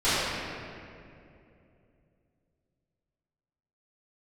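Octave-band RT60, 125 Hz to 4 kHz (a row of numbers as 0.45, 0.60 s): 3.7, 3.4, 3.0, 2.2, 2.2, 1.5 s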